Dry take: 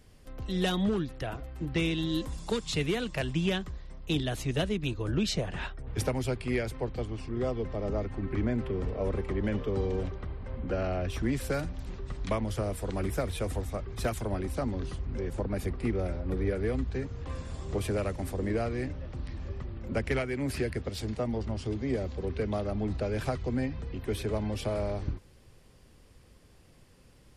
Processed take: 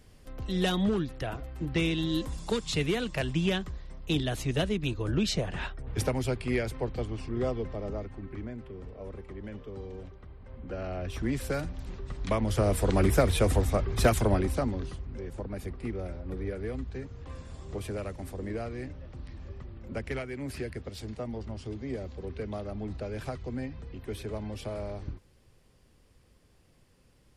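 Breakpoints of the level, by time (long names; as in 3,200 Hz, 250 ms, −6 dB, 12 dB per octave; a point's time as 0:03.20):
0:07.47 +1 dB
0:08.58 −11 dB
0:10.22 −11 dB
0:11.32 −0.5 dB
0:12.17 −0.5 dB
0:12.76 +8 dB
0:14.27 +8 dB
0:15.10 −5 dB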